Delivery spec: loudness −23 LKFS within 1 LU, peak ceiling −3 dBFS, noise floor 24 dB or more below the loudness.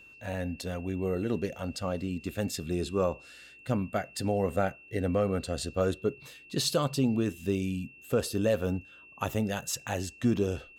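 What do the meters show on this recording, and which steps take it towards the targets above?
interfering tone 2,700 Hz; level of the tone −51 dBFS; integrated loudness −31.0 LKFS; sample peak −15.5 dBFS; target loudness −23.0 LKFS
→ notch filter 2,700 Hz, Q 30
level +8 dB

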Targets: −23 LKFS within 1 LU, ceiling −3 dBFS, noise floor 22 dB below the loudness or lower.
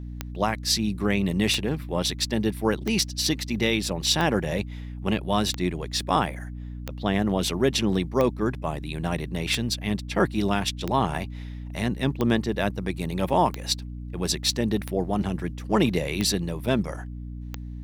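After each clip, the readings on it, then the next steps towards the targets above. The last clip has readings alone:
number of clicks 14; mains hum 60 Hz; hum harmonics up to 300 Hz; level of the hum −33 dBFS; integrated loudness −25.5 LKFS; sample peak −8.5 dBFS; target loudness −23.0 LKFS
→ click removal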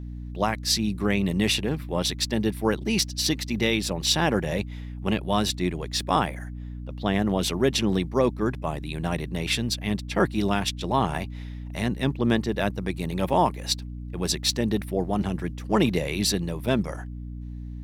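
number of clicks 0; mains hum 60 Hz; hum harmonics up to 300 Hz; level of the hum −33 dBFS
→ hum removal 60 Hz, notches 5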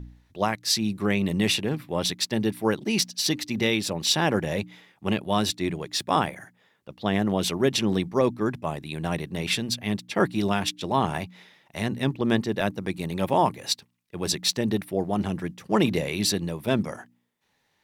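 mains hum none found; integrated loudness −26.0 LKFS; sample peak −9.0 dBFS; target loudness −23.0 LKFS
→ level +3 dB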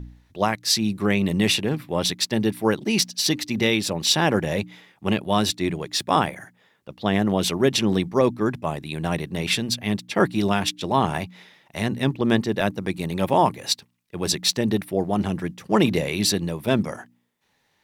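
integrated loudness −23.0 LKFS; sample peak −6.0 dBFS; background noise floor −68 dBFS

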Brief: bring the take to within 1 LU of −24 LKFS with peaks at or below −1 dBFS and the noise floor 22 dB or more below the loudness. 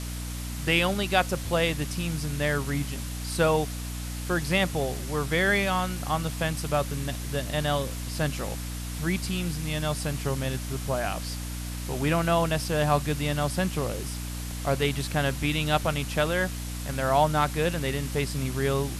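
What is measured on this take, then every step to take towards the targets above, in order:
mains hum 60 Hz; hum harmonics up to 300 Hz; level of the hum −32 dBFS; background noise floor −34 dBFS; target noise floor −50 dBFS; integrated loudness −27.5 LKFS; sample peak −8.0 dBFS; target loudness −24.0 LKFS
→ mains-hum notches 60/120/180/240/300 Hz
noise reduction from a noise print 16 dB
level +3.5 dB

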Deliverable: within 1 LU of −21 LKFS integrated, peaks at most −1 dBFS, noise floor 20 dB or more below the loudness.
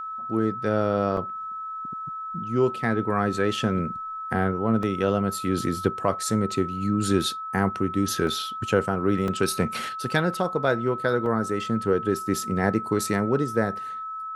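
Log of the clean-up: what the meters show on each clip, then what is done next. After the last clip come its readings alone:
number of dropouts 6; longest dropout 2.0 ms; interfering tone 1,300 Hz; level of the tone −31 dBFS; integrated loudness −25.5 LKFS; sample peak −7.5 dBFS; target loudness −21.0 LKFS
→ repair the gap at 0:01.17/0:04.83/0:08.27/0:09.28/0:10.34/0:11.26, 2 ms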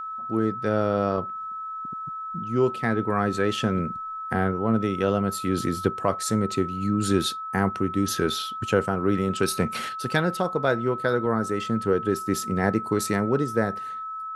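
number of dropouts 0; interfering tone 1,300 Hz; level of the tone −31 dBFS
→ notch filter 1,300 Hz, Q 30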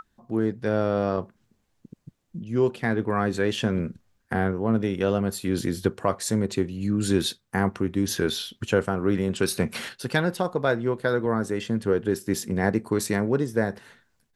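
interfering tone none found; integrated loudness −26.0 LKFS; sample peak −7.5 dBFS; target loudness −21.0 LKFS
→ level +5 dB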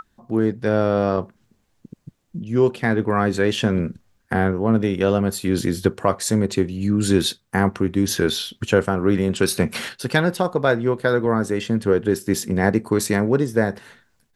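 integrated loudness −21.0 LKFS; sample peak −2.5 dBFS; background noise floor −66 dBFS

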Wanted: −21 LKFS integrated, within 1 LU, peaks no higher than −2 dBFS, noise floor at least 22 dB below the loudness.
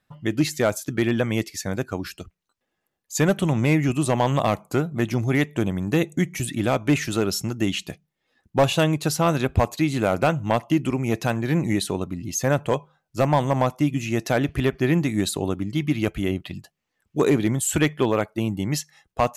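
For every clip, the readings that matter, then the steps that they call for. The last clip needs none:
share of clipped samples 0.3%; peaks flattened at −11.0 dBFS; integrated loudness −23.5 LKFS; sample peak −11.0 dBFS; target loudness −21.0 LKFS
→ clipped peaks rebuilt −11 dBFS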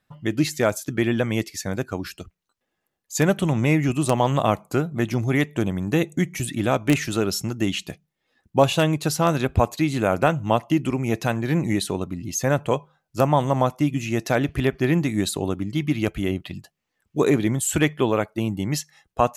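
share of clipped samples 0.0%; integrated loudness −23.0 LKFS; sample peak −2.0 dBFS; target loudness −21.0 LKFS
→ level +2 dB
brickwall limiter −2 dBFS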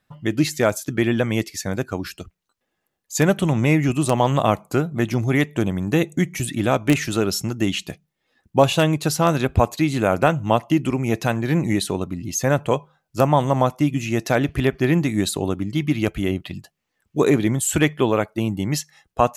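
integrated loudness −21.0 LKFS; sample peak −2.0 dBFS; background noise floor −77 dBFS

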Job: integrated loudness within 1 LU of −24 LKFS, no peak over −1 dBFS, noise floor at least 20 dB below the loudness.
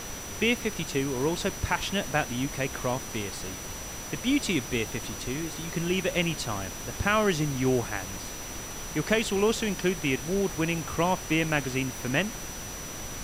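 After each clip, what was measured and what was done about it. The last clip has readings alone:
interfering tone 5,900 Hz; level of the tone −41 dBFS; background noise floor −38 dBFS; target noise floor −49 dBFS; integrated loudness −29.0 LKFS; sample peak −10.0 dBFS; target loudness −24.0 LKFS
→ notch filter 5,900 Hz, Q 30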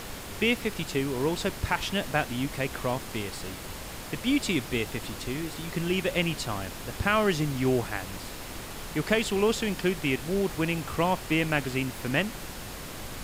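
interfering tone none found; background noise floor −40 dBFS; target noise floor −49 dBFS
→ noise reduction from a noise print 9 dB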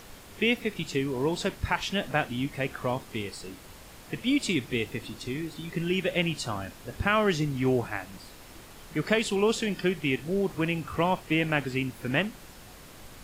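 background noise floor −49 dBFS; integrated loudness −29.0 LKFS; sample peak −10.5 dBFS; target loudness −24.0 LKFS
→ level +5 dB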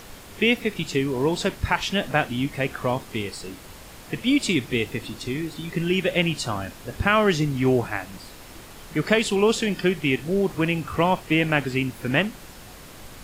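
integrated loudness −23.5 LKFS; sample peak −5.5 dBFS; background noise floor −44 dBFS

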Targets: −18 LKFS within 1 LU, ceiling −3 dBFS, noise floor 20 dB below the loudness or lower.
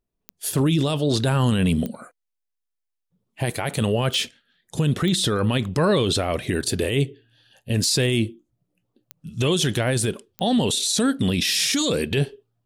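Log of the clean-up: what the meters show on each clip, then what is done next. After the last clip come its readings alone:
number of clicks 7; integrated loudness −22.0 LKFS; sample peak −11.5 dBFS; target loudness −18.0 LKFS
→ click removal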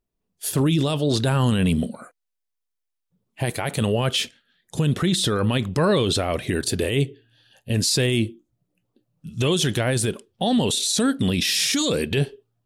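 number of clicks 0; integrated loudness −22.0 LKFS; sample peak −11.5 dBFS; target loudness −18.0 LKFS
→ level +4 dB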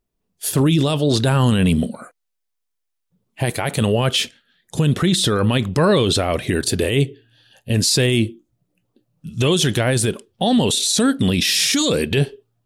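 integrated loudness −18.0 LKFS; sample peak −7.5 dBFS; background noise floor −76 dBFS

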